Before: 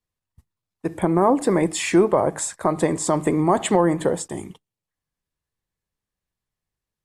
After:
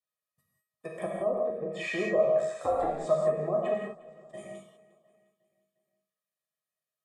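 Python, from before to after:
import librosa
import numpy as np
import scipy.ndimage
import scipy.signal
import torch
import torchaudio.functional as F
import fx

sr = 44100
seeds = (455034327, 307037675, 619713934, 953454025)

y = fx.env_lowpass_down(x, sr, base_hz=570.0, full_db=-15.0)
y = scipy.signal.sosfilt(scipy.signal.butter(4, 180.0, 'highpass', fs=sr, output='sos'), y)
y = fx.high_shelf(y, sr, hz=9800.0, db=6.0)
y = y + 0.96 * np.pad(y, (int(1.7 * sr / 1000.0), 0))[:len(y)]
y = fx.level_steps(y, sr, step_db=19, at=(1.05, 1.6), fade=0.02)
y = fx.comb_fb(y, sr, f0_hz=630.0, decay_s=0.4, harmonics='all', damping=0.0, mix_pct=90)
y = fx.ring_mod(y, sr, carrier_hz=fx.line((2.37, 29.0), (2.86, 180.0)), at=(2.37, 2.86), fade=0.02)
y = fx.gate_flip(y, sr, shuts_db=-43.0, range_db=-30, at=(3.73, 4.33), fade=0.02)
y = fx.echo_feedback(y, sr, ms=355, feedback_pct=54, wet_db=-22)
y = fx.rev_gated(y, sr, seeds[0], gate_ms=220, shape='flat', drr_db=-2.0)
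y = y * 10.0 ** (4.5 / 20.0)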